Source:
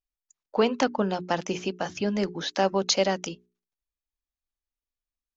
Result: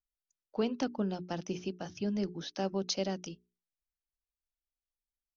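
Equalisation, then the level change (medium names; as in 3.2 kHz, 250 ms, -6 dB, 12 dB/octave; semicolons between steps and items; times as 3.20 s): steep low-pass 6.1 kHz 72 dB/octave; dynamic bell 280 Hz, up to +5 dB, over -35 dBFS, Q 0.86; graphic EQ 250/500/1000/2000/4000 Hz -5/-7/-9/-9/-5 dB; -4.0 dB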